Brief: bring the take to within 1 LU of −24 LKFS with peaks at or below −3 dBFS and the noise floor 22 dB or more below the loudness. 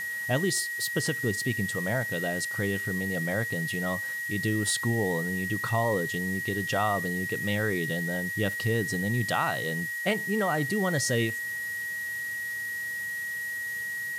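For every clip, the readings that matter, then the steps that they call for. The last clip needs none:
interfering tone 1,900 Hz; level of the tone −31 dBFS; background noise floor −34 dBFS; target noise floor −51 dBFS; integrated loudness −28.5 LKFS; sample peak −14.0 dBFS; target loudness −24.0 LKFS
→ notch filter 1,900 Hz, Q 30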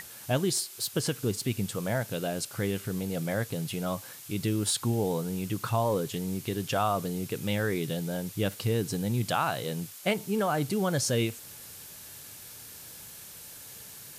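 interfering tone none found; background noise floor −46 dBFS; target noise floor −52 dBFS
→ noise reduction from a noise print 6 dB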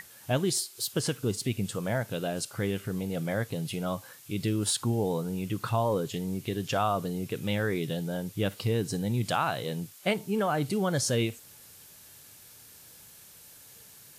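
background noise floor −52 dBFS; target noise floor −53 dBFS
→ noise reduction from a noise print 6 dB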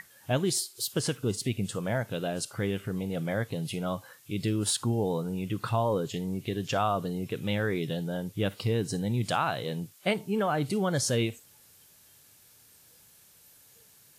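background noise floor −58 dBFS; integrated loudness −30.5 LKFS; sample peak −14.5 dBFS; target loudness −24.0 LKFS
→ level +6.5 dB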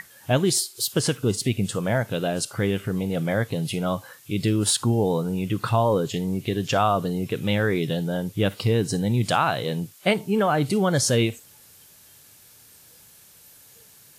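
integrated loudness −24.0 LKFS; sample peak −8.0 dBFS; background noise floor −52 dBFS

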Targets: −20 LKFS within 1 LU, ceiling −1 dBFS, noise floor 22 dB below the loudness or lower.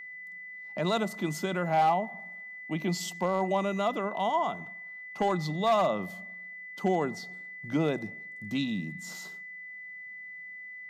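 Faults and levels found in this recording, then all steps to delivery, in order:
share of clipped samples 0.3%; peaks flattened at −18.5 dBFS; interfering tone 2,000 Hz; level of the tone −41 dBFS; integrated loudness −30.5 LKFS; sample peak −18.5 dBFS; target loudness −20.0 LKFS
→ clipped peaks rebuilt −18.5 dBFS
notch filter 2,000 Hz, Q 30
level +10.5 dB

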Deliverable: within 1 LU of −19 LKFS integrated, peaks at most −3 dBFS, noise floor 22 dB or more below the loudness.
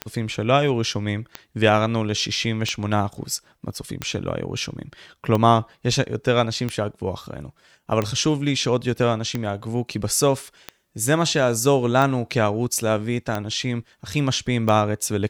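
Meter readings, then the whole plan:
number of clicks 12; integrated loudness −22.5 LKFS; sample peak −2.5 dBFS; target loudness −19.0 LKFS
→ click removal
level +3.5 dB
brickwall limiter −3 dBFS

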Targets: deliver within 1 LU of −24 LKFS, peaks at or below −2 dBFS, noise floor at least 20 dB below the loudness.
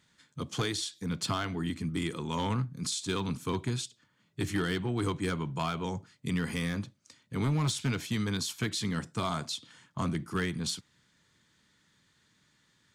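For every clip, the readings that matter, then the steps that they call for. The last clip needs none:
share of clipped samples 0.8%; peaks flattened at −23.5 dBFS; integrated loudness −33.0 LKFS; sample peak −23.5 dBFS; target loudness −24.0 LKFS
→ clipped peaks rebuilt −23.5 dBFS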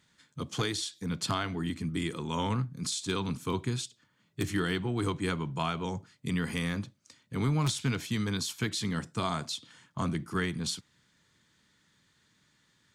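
share of clipped samples 0.0%; integrated loudness −33.0 LKFS; sample peak −14.5 dBFS; target loudness −24.0 LKFS
→ level +9 dB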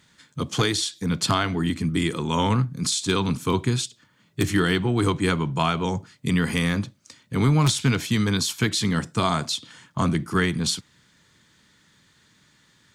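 integrated loudness −24.0 LKFS; sample peak −5.5 dBFS; background noise floor −61 dBFS

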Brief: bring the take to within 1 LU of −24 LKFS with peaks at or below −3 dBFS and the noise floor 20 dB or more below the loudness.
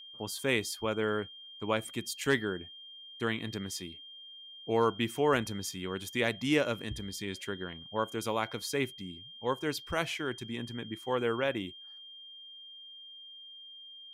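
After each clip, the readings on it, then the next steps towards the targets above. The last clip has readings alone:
interfering tone 3,200 Hz; level of the tone −47 dBFS; integrated loudness −33.5 LKFS; sample peak −14.5 dBFS; target loudness −24.0 LKFS
→ notch filter 3,200 Hz, Q 30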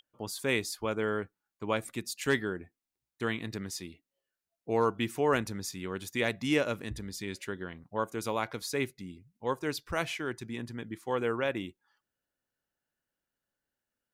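interfering tone none found; integrated loudness −33.5 LKFS; sample peak −14.5 dBFS; target loudness −24.0 LKFS
→ level +9.5 dB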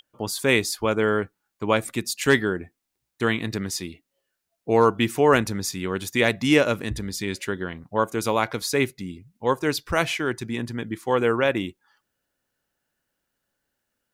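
integrated loudness −24.0 LKFS; sample peak −5.0 dBFS; background noise floor −80 dBFS

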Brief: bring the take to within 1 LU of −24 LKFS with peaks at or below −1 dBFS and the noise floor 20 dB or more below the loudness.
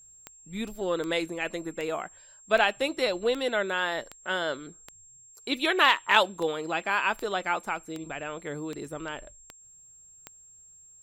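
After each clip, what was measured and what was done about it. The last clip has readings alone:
number of clicks 14; interfering tone 7,500 Hz; level of the tone −51 dBFS; integrated loudness −28.0 LKFS; sample peak −4.0 dBFS; target loudness −24.0 LKFS
→ click removal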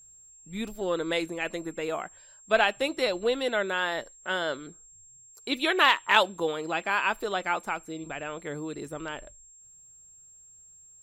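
number of clicks 0; interfering tone 7,500 Hz; level of the tone −51 dBFS
→ notch filter 7,500 Hz, Q 30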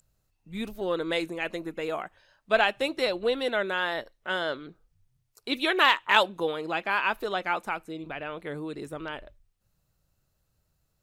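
interfering tone none found; integrated loudness −28.0 LKFS; sample peak −4.0 dBFS; target loudness −24.0 LKFS
→ level +4 dB
brickwall limiter −1 dBFS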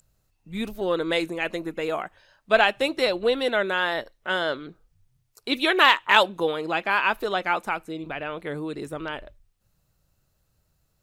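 integrated loudness −24.0 LKFS; sample peak −1.0 dBFS; background noise floor −71 dBFS

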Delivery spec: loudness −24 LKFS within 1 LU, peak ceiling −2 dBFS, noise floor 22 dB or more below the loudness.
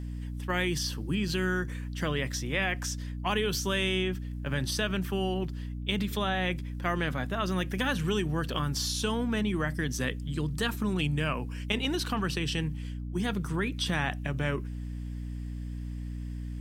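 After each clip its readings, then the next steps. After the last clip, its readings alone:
mains hum 60 Hz; hum harmonics up to 300 Hz; level of the hum −34 dBFS; integrated loudness −31.0 LKFS; sample peak −13.0 dBFS; target loudness −24.0 LKFS
→ hum removal 60 Hz, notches 5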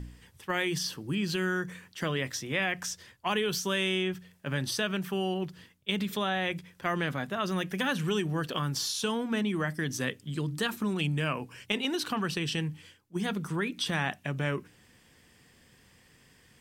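mains hum none found; integrated loudness −31.5 LKFS; sample peak −13.0 dBFS; target loudness −24.0 LKFS
→ level +7.5 dB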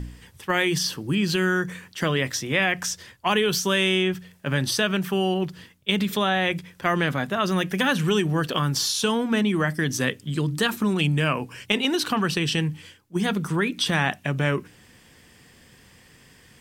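integrated loudness −24.0 LKFS; sample peak −5.5 dBFS; background noise floor −54 dBFS

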